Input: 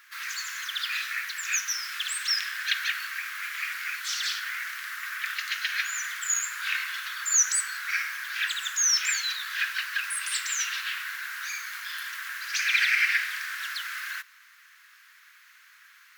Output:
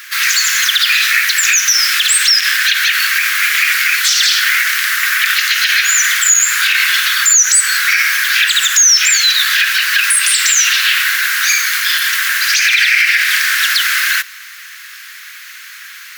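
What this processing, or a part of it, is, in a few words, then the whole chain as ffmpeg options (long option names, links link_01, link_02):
mastering chain: -af "equalizer=frequency=940:width_type=o:width=0.95:gain=-3,acompressor=threshold=-29dB:ratio=2,tiltshelf=frequency=800:gain=-10,alimiter=level_in=16dB:limit=-1dB:release=50:level=0:latency=1,volume=-1dB"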